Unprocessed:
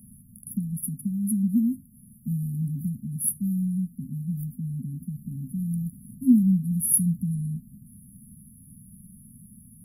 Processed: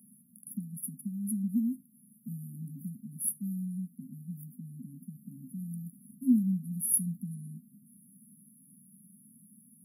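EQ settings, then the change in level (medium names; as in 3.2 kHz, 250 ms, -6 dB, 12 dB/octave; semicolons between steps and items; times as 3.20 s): high-pass 190 Hz 24 dB/octave; -6.0 dB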